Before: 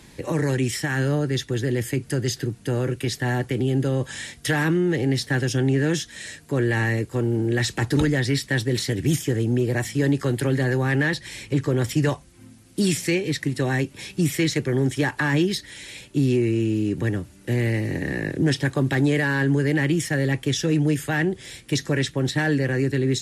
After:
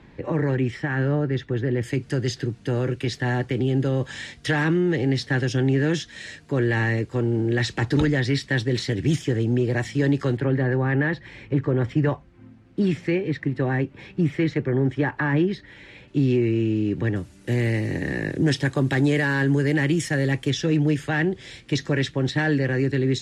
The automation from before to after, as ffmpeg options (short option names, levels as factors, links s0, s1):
-af "asetnsamples=n=441:p=0,asendcmd='1.83 lowpass f 5000;10.37 lowpass f 1900;16.08 lowpass f 3700;17.16 lowpass f 8800;20.5 lowpass f 4900',lowpass=2100"